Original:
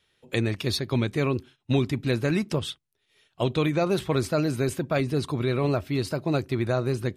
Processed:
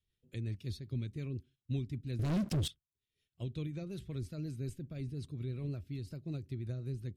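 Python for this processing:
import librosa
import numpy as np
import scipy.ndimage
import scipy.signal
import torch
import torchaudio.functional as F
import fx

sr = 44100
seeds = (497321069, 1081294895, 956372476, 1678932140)

y = fx.tone_stack(x, sr, knobs='10-0-1')
y = fx.leveller(y, sr, passes=5, at=(2.19, 2.68))
y = fx.rotary(y, sr, hz=5.5)
y = y * 10.0 ** (3.5 / 20.0)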